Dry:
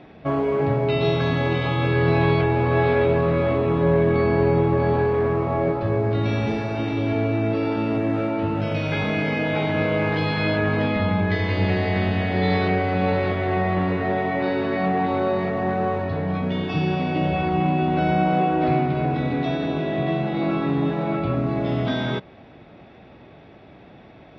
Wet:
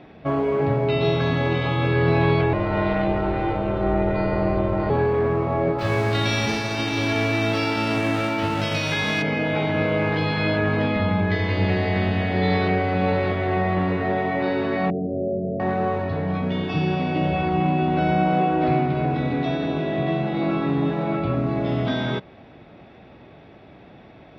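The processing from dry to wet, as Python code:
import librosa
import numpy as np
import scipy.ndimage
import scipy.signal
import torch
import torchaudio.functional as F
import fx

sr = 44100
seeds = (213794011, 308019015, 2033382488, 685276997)

y = fx.ring_mod(x, sr, carrier_hz=220.0, at=(2.53, 4.9))
y = fx.envelope_flatten(y, sr, power=0.6, at=(5.78, 9.21), fade=0.02)
y = fx.cheby_ripple(y, sr, hz=670.0, ripple_db=3, at=(14.9, 15.6))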